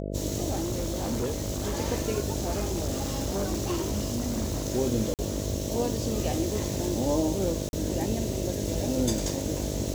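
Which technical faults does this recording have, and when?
buzz 50 Hz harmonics 13 -33 dBFS
0.51–1.77 s: clipped -25 dBFS
2.40–4.62 s: clipped -24 dBFS
5.14–5.19 s: dropout 48 ms
7.69–7.73 s: dropout 41 ms

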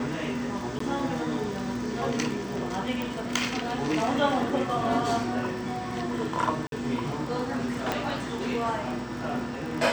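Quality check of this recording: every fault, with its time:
crackle 30 per s -34 dBFS
0.79–0.80 s: dropout
3.02 s: pop
6.67–6.72 s: dropout 52 ms
7.92 s: pop -11 dBFS

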